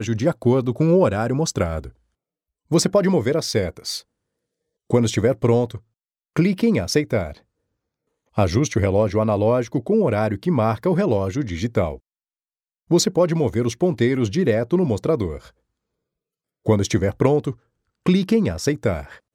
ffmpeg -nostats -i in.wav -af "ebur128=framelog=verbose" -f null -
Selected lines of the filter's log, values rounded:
Integrated loudness:
  I:         -20.6 LUFS
  Threshold: -31.0 LUFS
Loudness range:
  LRA:         2.7 LU
  Threshold: -41.9 LUFS
  LRA low:   -23.2 LUFS
  LRA high:  -20.4 LUFS